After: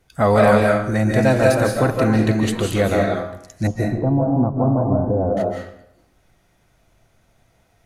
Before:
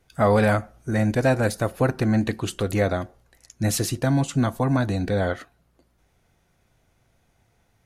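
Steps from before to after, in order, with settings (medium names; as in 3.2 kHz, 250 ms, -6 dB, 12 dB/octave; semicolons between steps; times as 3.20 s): 3.67–5.37 s: steep low-pass 970 Hz 36 dB/octave; reverberation RT60 0.70 s, pre-delay 120 ms, DRR -0.5 dB; trim +2.5 dB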